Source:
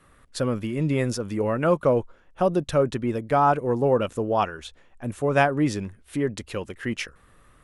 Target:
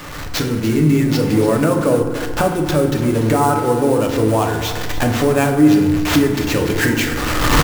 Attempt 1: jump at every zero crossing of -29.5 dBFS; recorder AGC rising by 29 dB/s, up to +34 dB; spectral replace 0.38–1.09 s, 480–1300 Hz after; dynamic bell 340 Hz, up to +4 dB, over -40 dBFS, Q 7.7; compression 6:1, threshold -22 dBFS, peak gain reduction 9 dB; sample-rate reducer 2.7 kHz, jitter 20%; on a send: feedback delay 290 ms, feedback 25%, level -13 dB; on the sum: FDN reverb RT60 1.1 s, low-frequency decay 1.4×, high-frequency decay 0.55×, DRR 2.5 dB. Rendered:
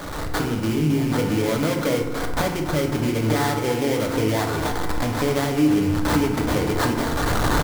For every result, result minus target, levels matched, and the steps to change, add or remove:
compression: peak gain reduction +9 dB; sample-rate reducer: distortion +7 dB
remove: compression 6:1, threshold -22 dBFS, peak gain reduction 9 dB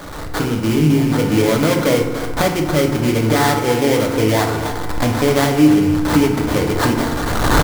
sample-rate reducer: distortion +6 dB
change: sample-rate reducer 9.6 kHz, jitter 20%

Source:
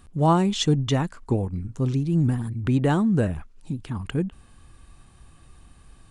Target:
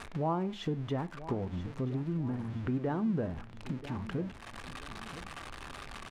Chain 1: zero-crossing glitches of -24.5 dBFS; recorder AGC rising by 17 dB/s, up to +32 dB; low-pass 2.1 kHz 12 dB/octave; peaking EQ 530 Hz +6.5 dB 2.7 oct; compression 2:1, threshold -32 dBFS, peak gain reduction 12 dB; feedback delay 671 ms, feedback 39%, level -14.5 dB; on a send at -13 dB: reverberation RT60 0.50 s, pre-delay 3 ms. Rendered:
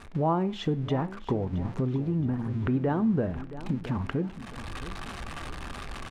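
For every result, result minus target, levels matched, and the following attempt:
echo 313 ms early; compression: peak gain reduction -6 dB; zero-crossing glitches: distortion -7 dB
zero-crossing glitches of -24.5 dBFS; recorder AGC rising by 17 dB/s, up to +32 dB; low-pass 2.1 kHz 12 dB/octave; peaking EQ 530 Hz +6.5 dB 2.7 oct; compression 2:1, threshold -32 dBFS, peak gain reduction 12 dB; feedback delay 984 ms, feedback 39%, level -14.5 dB; on a send at -13 dB: reverberation RT60 0.50 s, pre-delay 3 ms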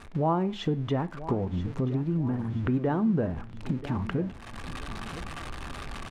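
compression: peak gain reduction -6 dB; zero-crossing glitches: distortion -7 dB
zero-crossing glitches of -24.5 dBFS; recorder AGC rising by 17 dB/s, up to +32 dB; low-pass 2.1 kHz 12 dB/octave; peaking EQ 530 Hz +6.5 dB 2.7 oct; compression 2:1, threshold -44 dBFS, peak gain reduction 18 dB; feedback delay 984 ms, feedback 39%, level -14.5 dB; on a send at -13 dB: reverberation RT60 0.50 s, pre-delay 3 ms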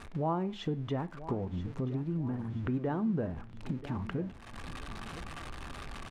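zero-crossing glitches: distortion -7 dB
zero-crossing glitches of -17.5 dBFS; recorder AGC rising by 17 dB/s, up to +32 dB; low-pass 2.1 kHz 12 dB/octave; peaking EQ 530 Hz +6.5 dB 2.7 oct; compression 2:1, threshold -44 dBFS, peak gain reduction 18 dB; feedback delay 984 ms, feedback 39%, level -14.5 dB; on a send at -13 dB: reverberation RT60 0.50 s, pre-delay 3 ms

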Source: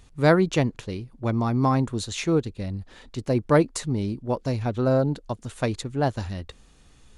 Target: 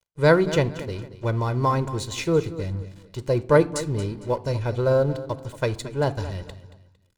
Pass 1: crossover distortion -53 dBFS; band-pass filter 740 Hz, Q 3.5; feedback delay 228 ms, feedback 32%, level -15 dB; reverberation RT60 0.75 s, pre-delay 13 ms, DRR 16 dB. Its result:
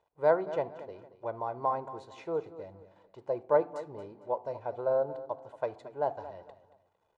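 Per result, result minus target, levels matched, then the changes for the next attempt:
crossover distortion: distortion -6 dB; 1 kHz band +3.5 dB
change: crossover distortion -45.5 dBFS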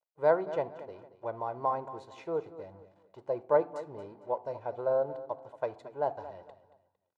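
1 kHz band +3.5 dB
remove: band-pass filter 740 Hz, Q 3.5

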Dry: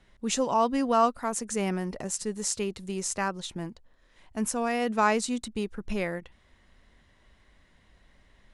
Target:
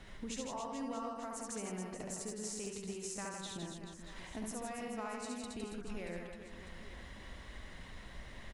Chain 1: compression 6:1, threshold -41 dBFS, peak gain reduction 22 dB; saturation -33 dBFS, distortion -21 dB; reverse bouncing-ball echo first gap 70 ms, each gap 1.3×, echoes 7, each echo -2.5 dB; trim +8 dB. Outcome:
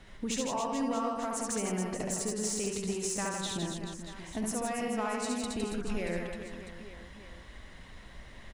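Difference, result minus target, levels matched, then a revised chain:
compression: peak gain reduction -10 dB
compression 6:1, threshold -53 dBFS, peak gain reduction 32 dB; saturation -33 dBFS, distortion -38 dB; reverse bouncing-ball echo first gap 70 ms, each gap 1.3×, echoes 7, each echo -2.5 dB; trim +8 dB

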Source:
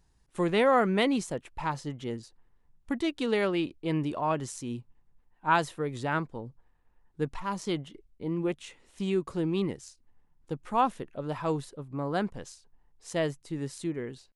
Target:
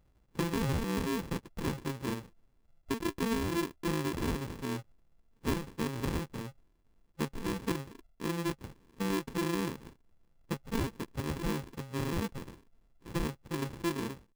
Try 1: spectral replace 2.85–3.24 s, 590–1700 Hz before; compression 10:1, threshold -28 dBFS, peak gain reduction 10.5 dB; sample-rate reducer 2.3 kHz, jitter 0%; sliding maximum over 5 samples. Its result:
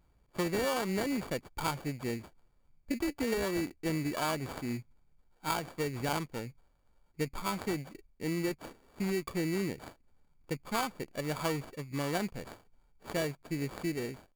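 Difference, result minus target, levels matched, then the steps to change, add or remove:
sample-rate reducer: distortion -16 dB
change: sample-rate reducer 680 Hz, jitter 0%

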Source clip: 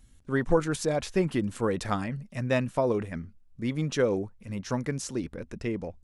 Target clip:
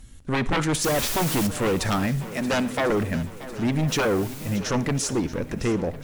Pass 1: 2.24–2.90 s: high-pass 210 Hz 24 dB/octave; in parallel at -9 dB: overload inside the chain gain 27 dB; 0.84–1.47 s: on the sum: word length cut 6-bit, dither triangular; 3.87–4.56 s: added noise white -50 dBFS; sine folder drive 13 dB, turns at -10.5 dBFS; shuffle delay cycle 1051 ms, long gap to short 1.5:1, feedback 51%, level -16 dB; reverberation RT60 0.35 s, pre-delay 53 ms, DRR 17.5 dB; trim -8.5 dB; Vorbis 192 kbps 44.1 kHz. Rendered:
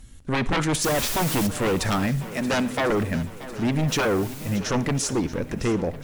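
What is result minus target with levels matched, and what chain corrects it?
overload inside the chain: distortion -5 dB
2.24–2.90 s: high-pass 210 Hz 24 dB/octave; in parallel at -9 dB: overload inside the chain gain 37 dB; 0.84–1.47 s: on the sum: word length cut 6-bit, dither triangular; 3.87–4.56 s: added noise white -50 dBFS; sine folder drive 13 dB, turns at -10.5 dBFS; shuffle delay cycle 1051 ms, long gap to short 1.5:1, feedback 51%, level -16 dB; reverberation RT60 0.35 s, pre-delay 53 ms, DRR 17.5 dB; trim -8.5 dB; Vorbis 192 kbps 44.1 kHz

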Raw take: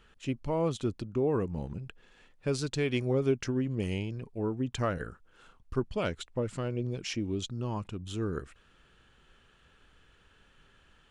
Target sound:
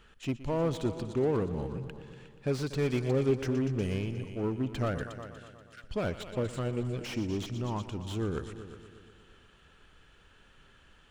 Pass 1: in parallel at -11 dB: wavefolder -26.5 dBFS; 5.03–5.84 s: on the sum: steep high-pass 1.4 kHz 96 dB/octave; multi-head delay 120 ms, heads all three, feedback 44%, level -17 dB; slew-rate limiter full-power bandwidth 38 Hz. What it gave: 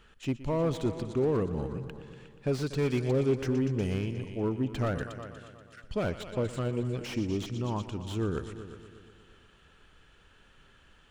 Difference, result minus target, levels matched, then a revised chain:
wavefolder: distortion -18 dB
in parallel at -11 dB: wavefolder -35 dBFS; 5.03–5.84 s: on the sum: steep high-pass 1.4 kHz 96 dB/octave; multi-head delay 120 ms, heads all three, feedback 44%, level -17 dB; slew-rate limiter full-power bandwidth 38 Hz

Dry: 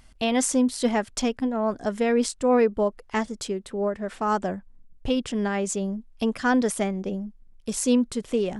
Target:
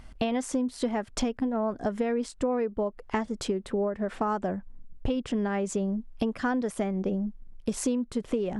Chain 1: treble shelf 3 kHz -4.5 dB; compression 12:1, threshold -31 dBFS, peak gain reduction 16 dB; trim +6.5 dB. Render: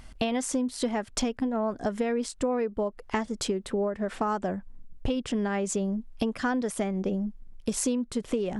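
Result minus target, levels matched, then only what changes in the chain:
8 kHz band +5.0 dB
change: treble shelf 3 kHz -11.5 dB

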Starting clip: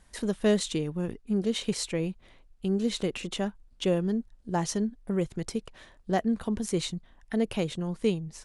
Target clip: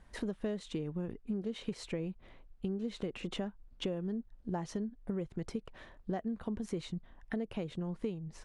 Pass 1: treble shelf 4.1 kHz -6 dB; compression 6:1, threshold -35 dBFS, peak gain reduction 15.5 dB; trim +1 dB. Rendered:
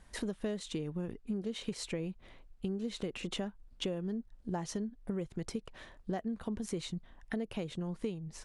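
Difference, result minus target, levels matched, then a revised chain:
8 kHz band +7.0 dB
treble shelf 4.1 kHz -16.5 dB; compression 6:1, threshold -35 dBFS, peak gain reduction 15 dB; trim +1 dB

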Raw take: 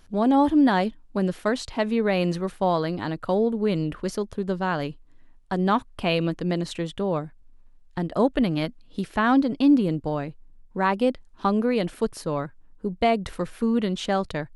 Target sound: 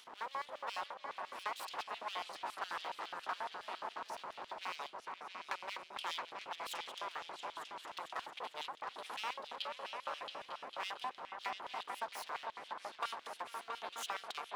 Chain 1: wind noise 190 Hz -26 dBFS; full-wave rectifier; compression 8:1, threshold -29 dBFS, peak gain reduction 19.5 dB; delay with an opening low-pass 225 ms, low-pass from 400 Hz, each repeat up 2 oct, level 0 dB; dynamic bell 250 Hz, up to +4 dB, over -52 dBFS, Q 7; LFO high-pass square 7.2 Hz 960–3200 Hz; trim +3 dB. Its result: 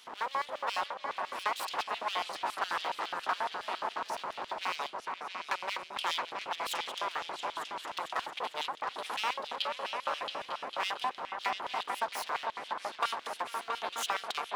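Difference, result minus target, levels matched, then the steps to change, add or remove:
compression: peak gain reduction -8.5 dB
change: compression 8:1, threshold -38.5 dBFS, peak gain reduction 28 dB

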